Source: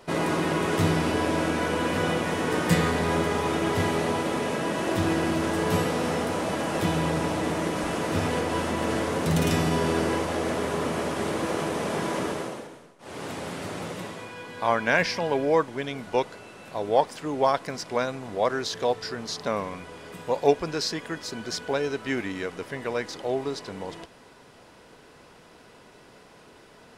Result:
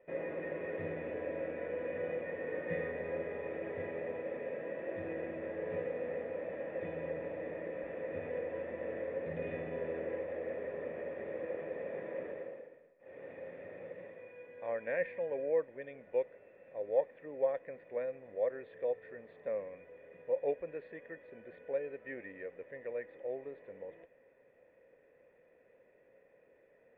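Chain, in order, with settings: vocal tract filter e; gain -3 dB

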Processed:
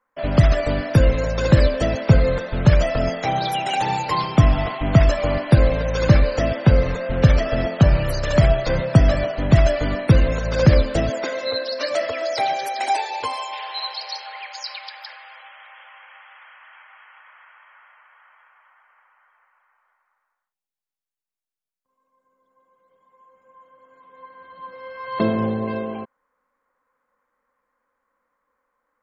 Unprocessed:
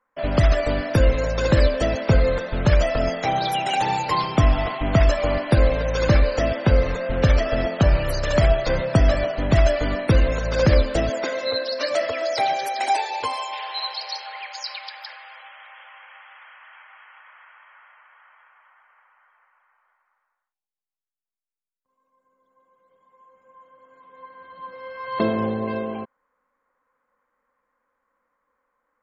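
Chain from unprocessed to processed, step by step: dynamic EQ 140 Hz, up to +7 dB, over -33 dBFS, Q 1.2

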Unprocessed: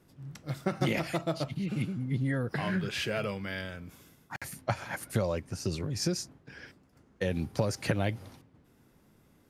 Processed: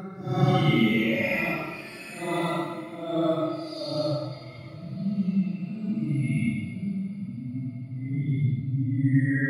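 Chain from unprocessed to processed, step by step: per-bin expansion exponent 2; two-slope reverb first 0.3 s, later 2.1 s, from -18 dB, DRR 6 dB; Paulstretch 6×, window 0.10 s, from 0.75; gain +8.5 dB

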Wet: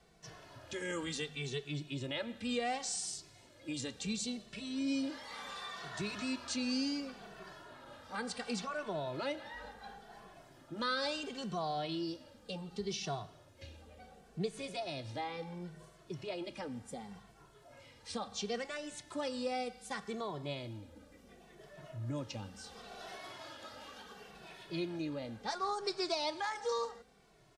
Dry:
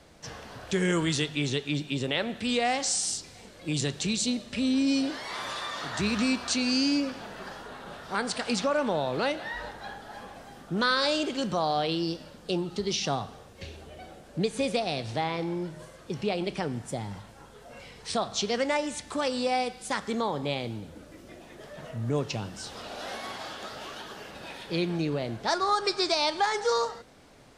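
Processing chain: endless flanger 2.2 ms -0.7 Hz; gain -7.5 dB

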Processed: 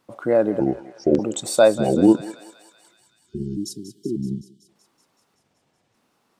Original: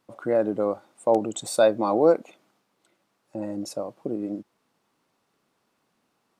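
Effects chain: trilling pitch shifter -7.5 st, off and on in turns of 0.594 s; spectral delete 2.93–4.69, 410–2900 Hz; thinning echo 0.189 s, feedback 71%, high-pass 860 Hz, level -12 dB; gain +4.5 dB

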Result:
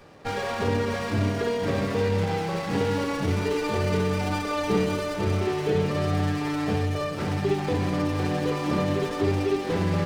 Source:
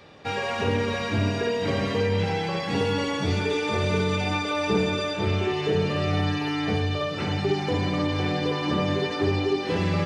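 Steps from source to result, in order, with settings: running maximum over 9 samples

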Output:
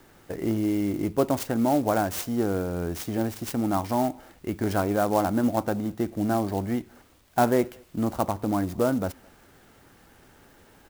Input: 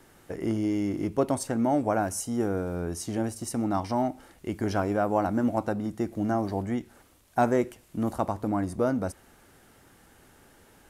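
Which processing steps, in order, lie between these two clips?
speakerphone echo 0.21 s, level -28 dB; clock jitter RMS 0.032 ms; gain +2 dB

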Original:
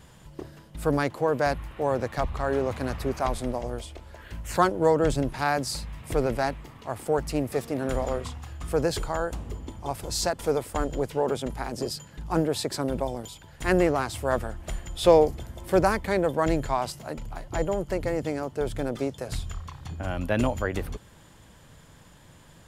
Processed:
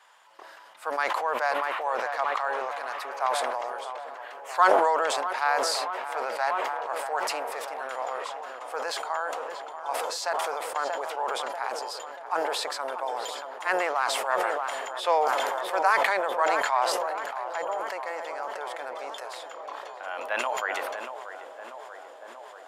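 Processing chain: HPF 880 Hz 24 dB/oct; tilt -4 dB/oct; tape echo 0.637 s, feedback 88%, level -9 dB, low-pass 1400 Hz; sustainer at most 21 dB/s; gain +4 dB

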